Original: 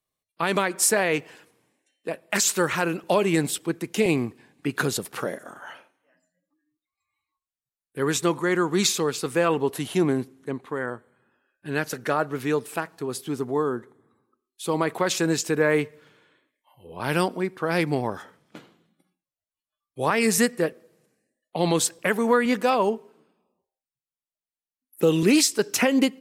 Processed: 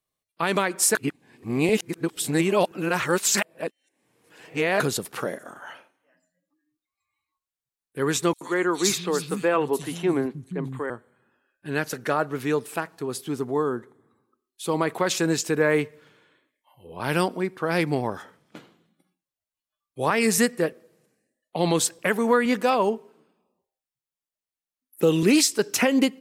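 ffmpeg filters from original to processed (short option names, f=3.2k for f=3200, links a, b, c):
-filter_complex "[0:a]asettb=1/sr,asplit=3[a][b][c];[a]atrim=end=8.334[d];[b]atrim=start=8.33:end=10.9,asetpts=PTS-STARTPTS,afade=t=in:d=0.004:c=qsin,afade=t=out:st=2.566:d=0.004:c=qsin,acrossover=split=190|3600[e][f][g];[f]adelay=80[h];[e]adelay=560[i];[i][h][g]amix=inputs=3:normalize=0,atrim=end_sample=113337[j];[c]atrim=start=10.896[k];[d][j]acrossfade=d=0.004:c1=hsin:c2=qsin[l];[l][k]acrossfade=d=0.004:c1=qsin:c2=hsin,asplit=3[m][n][o];[m]atrim=end=0.952[p];[n]atrim=start=0.948:end=4.802,asetpts=PTS-STARTPTS,areverse[q];[o]atrim=start=4.798[r];[p][q]acrossfade=d=0.004:c1=hsin:c2=hsin[s];[s][r]acrossfade=d=0.004:c1=hsin:c2=hsin"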